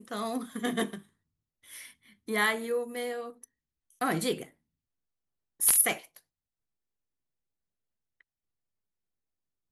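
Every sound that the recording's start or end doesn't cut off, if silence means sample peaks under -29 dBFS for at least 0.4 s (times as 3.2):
2.29–3.14
4.01–4.43
5.61–5.93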